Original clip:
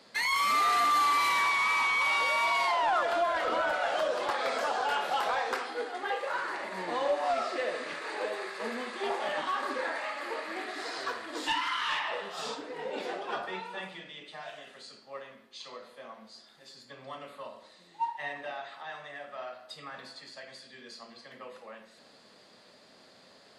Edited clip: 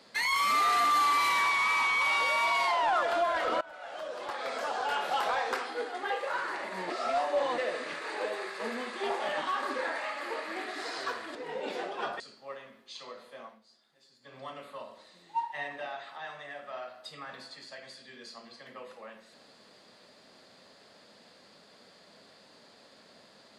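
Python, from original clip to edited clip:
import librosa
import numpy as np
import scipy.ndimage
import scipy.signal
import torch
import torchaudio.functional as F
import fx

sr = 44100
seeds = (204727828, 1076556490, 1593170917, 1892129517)

y = fx.edit(x, sr, fx.fade_in_from(start_s=3.61, length_s=1.56, floor_db=-22.5),
    fx.reverse_span(start_s=6.9, length_s=0.68),
    fx.cut(start_s=11.35, length_s=1.3),
    fx.cut(start_s=13.5, length_s=1.35),
    fx.fade_down_up(start_s=16.09, length_s=0.92, db=-12.0, fade_s=0.16), tone=tone)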